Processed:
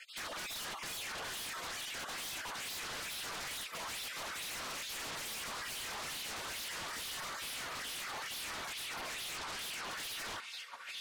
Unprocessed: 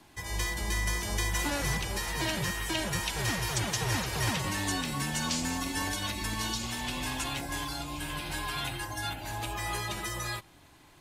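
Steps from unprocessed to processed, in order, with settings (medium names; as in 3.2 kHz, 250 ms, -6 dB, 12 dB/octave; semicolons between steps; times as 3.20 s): random holes in the spectrogram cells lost 32%; in parallel at -9.5 dB: crossover distortion -46.5 dBFS; 9.37–9.85 s: on the sum: cabinet simulation 430–7600 Hz, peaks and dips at 620 Hz +8 dB, 1.1 kHz -10 dB, 2.5 kHz -8 dB; on a send: tape echo 690 ms, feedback 33%, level -14.5 dB, low-pass 5.1 kHz; on the sum: spectral gate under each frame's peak -20 dB weak; LFO band-pass sine 2.3 Hz 970–3500 Hz; compression, threshold -51 dBFS, peak gain reduction 10.5 dB; peak limiter -50.5 dBFS, peak gain reduction 10.5 dB; 4.52–5.50 s: comb 4.5 ms, depth 46%; sine folder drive 12 dB, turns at -49 dBFS; trim +10 dB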